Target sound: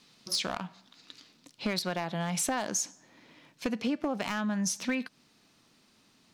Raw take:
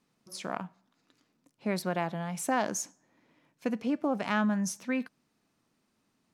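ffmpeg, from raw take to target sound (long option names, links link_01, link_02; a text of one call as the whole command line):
ffmpeg -i in.wav -af "asetnsamples=nb_out_samples=441:pad=0,asendcmd='1.94 equalizer g 9',equalizer=frequency=4000:width_type=o:width=1.6:gain=15,acompressor=threshold=-35dB:ratio=8,asoftclip=type=hard:threshold=-30.5dB,volume=8dB" out.wav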